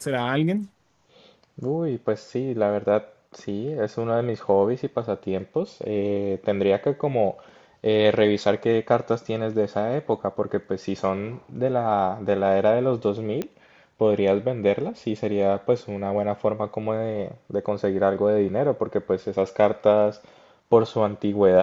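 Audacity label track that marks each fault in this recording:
13.420000	13.420000	click −15 dBFS

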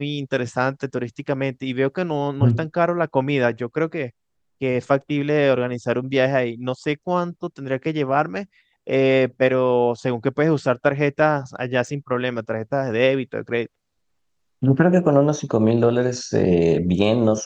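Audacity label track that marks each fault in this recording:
11.870000	11.870000	drop-out 2.9 ms

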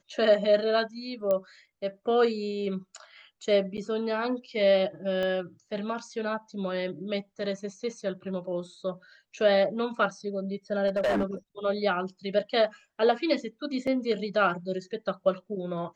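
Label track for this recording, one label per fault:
1.310000	1.310000	click −16 dBFS
3.770000	3.780000	drop-out 7.9 ms
5.230000	5.230000	click −20 dBFS
10.870000	11.240000	clipping −22 dBFS
13.870000	13.870000	drop-out 4.3 ms

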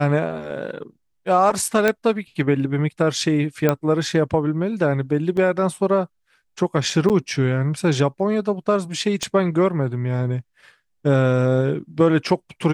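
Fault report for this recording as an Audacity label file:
1.880000	1.880000	click −5 dBFS
3.690000	3.690000	click −5 dBFS
5.370000	5.370000	drop-out 2.9 ms
7.090000	7.100000	drop-out 8.2 ms
9.230000	9.230000	click −12 dBFS

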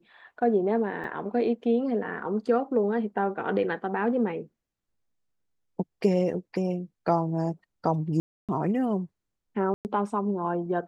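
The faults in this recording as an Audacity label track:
1.040000	1.040000	drop-out 2.2 ms
8.200000	8.490000	drop-out 287 ms
9.740000	9.850000	drop-out 109 ms

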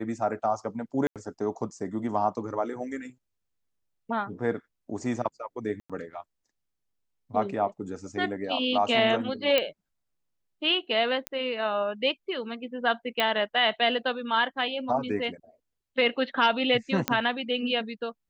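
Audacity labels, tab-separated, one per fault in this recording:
1.070000	1.160000	drop-out 87 ms
5.800000	5.900000	drop-out 96 ms
9.580000	9.580000	click −9 dBFS
11.270000	11.270000	click −13 dBFS
13.200000	13.200000	click −11 dBFS
17.080000	17.080000	click −7 dBFS

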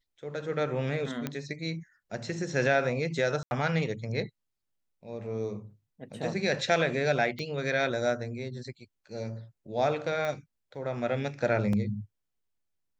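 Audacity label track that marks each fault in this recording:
1.270000	1.270000	click −17 dBFS
3.430000	3.510000	drop-out 81 ms
7.390000	7.390000	click −24 dBFS
10.250000	10.250000	click −21 dBFS
11.730000	11.730000	drop-out 3.1 ms

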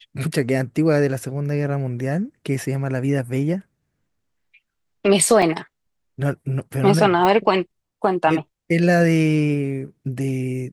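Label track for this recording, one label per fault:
5.420000	5.420000	drop-out 4.3 ms
7.250000	7.250000	click −7 dBFS

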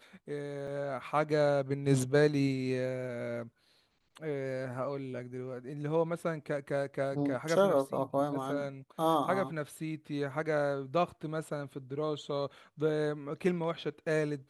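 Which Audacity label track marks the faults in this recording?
0.670000	0.670000	drop-out 4.4 ms

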